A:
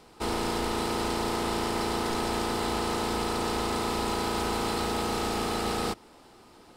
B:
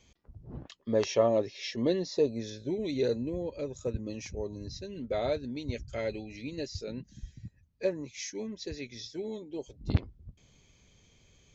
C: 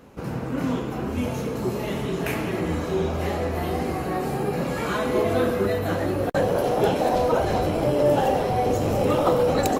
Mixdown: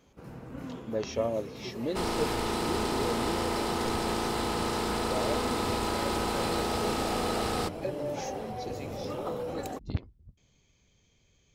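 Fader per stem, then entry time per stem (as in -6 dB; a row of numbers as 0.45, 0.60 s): -1.5, -5.0, -15.0 dB; 1.75, 0.00, 0.00 s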